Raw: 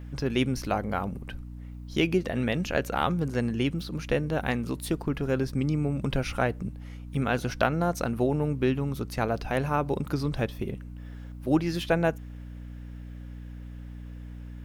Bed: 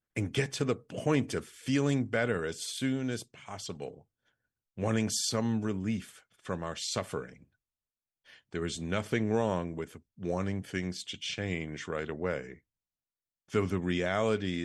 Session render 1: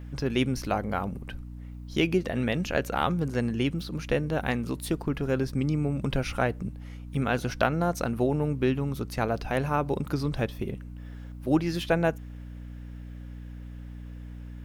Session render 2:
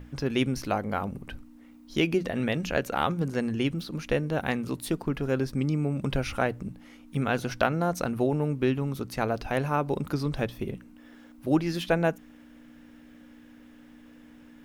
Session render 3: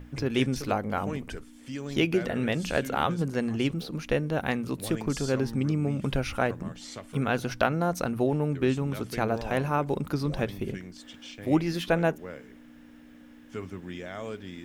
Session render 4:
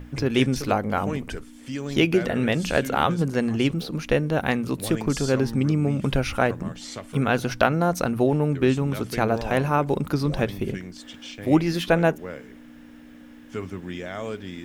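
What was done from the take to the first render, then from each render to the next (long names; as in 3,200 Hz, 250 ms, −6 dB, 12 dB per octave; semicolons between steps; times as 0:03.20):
no processing that can be heard
mains-hum notches 60/120/180 Hz
mix in bed −8.5 dB
level +5 dB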